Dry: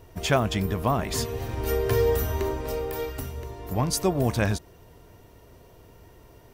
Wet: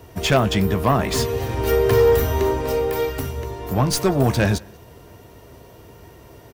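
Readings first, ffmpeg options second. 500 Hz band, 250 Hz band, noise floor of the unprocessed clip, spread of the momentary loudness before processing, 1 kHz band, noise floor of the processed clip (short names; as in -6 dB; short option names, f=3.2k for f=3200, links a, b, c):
+7.5 dB, +6.5 dB, -52 dBFS, 10 LU, +6.5 dB, -46 dBFS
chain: -filter_complex "[0:a]highpass=58,aeval=exprs='0.422*(cos(1*acos(clip(val(0)/0.422,-1,1)))-cos(1*PI/2))+0.119*(cos(5*acos(clip(val(0)/0.422,-1,1)))-cos(5*PI/2))':c=same,acrossover=split=110|5500[a][b][c];[b]asplit=2[d][e];[e]adelay=15,volume=-11dB[f];[d][f]amix=inputs=2:normalize=0[g];[c]aeval=exprs='clip(val(0),-1,0.0106)':c=same[h];[a][g][h]amix=inputs=3:normalize=0,asplit=2[i][j];[j]adelay=186.6,volume=-27dB,highshelf=f=4k:g=-4.2[k];[i][k]amix=inputs=2:normalize=0"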